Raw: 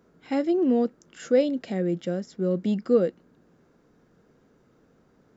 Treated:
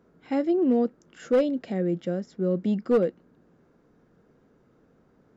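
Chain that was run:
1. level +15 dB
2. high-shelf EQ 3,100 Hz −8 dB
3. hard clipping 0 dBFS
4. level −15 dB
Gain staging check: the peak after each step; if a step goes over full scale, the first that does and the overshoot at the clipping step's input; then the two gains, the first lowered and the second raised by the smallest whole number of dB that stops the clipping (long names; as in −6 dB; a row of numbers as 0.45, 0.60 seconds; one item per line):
+5.0, +5.0, 0.0, −15.0 dBFS
step 1, 5.0 dB
step 1 +10 dB, step 4 −10 dB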